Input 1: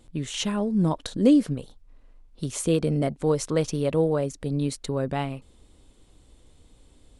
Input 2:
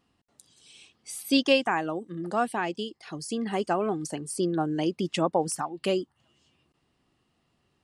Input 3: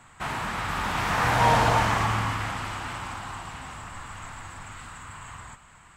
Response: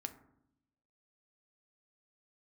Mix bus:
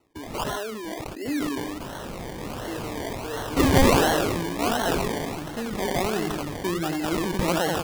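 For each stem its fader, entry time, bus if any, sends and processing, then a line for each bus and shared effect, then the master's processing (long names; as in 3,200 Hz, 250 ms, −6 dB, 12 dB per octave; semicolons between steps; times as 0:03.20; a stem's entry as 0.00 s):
−9.5 dB, 0.00 s, bus A, send −4.5 dB, no echo send, high-pass filter 320 Hz 24 dB per octave; comb filter 2.9 ms, depth 81%
−2.0 dB, 2.25 s, no bus, no send, echo send −6.5 dB, no processing
−10.0 dB, 1.60 s, bus A, no send, no echo send, no processing
bus A: 0.0 dB, low-pass filter 3,300 Hz 6 dB per octave; brickwall limiter −29.5 dBFS, peak gain reduction 12.5 dB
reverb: on, RT60 0.75 s, pre-delay 4 ms
echo: repeating echo 89 ms, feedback 48%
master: flat-topped bell 2,200 Hz +11.5 dB 1.2 octaves; sample-and-hold swept by an LFO 26×, swing 60% 1.4 Hz; level that may fall only so fast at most 21 dB per second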